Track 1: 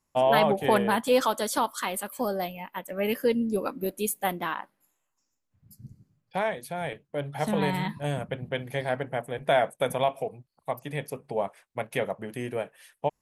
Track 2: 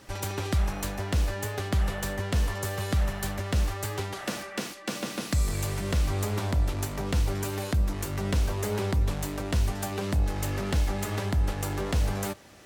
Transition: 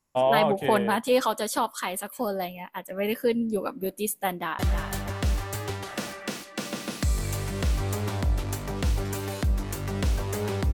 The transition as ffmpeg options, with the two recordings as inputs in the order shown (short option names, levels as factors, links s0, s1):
-filter_complex "[0:a]apad=whole_dur=10.73,atrim=end=10.73,atrim=end=4.592[s0];[1:a]atrim=start=2.888:end=9.03[s1];[s0][s1]acrossfade=d=0.004:c1=hsin:c2=hsin,asplit=2[s2][s3];[s3]afade=t=in:st=4.27:d=0.01,afade=t=out:st=4.59:d=0.01,aecho=0:1:320|640|960|1280|1600|1920:0.421697|0.210848|0.105424|0.0527121|0.026356|0.013178[s4];[s2][s4]amix=inputs=2:normalize=0"